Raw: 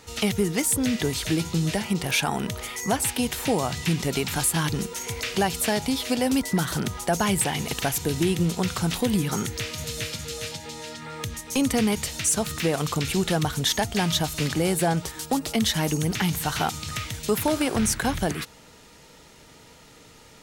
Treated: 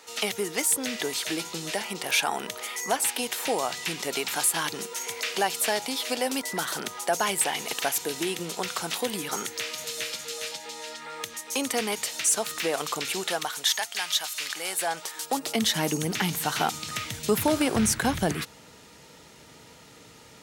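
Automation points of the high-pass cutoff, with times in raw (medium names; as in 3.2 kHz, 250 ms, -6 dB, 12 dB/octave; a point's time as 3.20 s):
13.10 s 450 Hz
13.94 s 1.3 kHz
14.45 s 1.3 kHz
15.22 s 550 Hz
15.66 s 210 Hz
16.93 s 210 Hz
17.35 s 76 Hz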